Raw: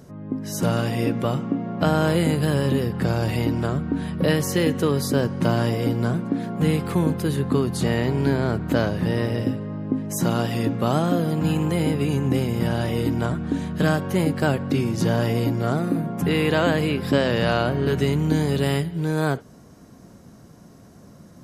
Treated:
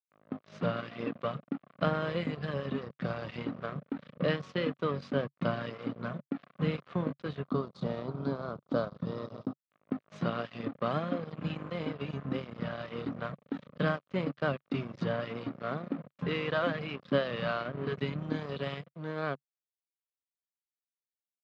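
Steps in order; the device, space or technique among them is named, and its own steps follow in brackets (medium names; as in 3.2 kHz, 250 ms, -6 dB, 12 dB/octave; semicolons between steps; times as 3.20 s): reverb removal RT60 1.8 s; blown loudspeaker (crossover distortion -32 dBFS; cabinet simulation 140–3900 Hz, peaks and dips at 140 Hz +3 dB, 340 Hz -5 dB, 570 Hz +4 dB, 860 Hz -7 dB, 1.2 kHz +6 dB); 7.45–9.64 s: high-order bell 2.2 kHz -12.5 dB 1.1 oct; trim -6.5 dB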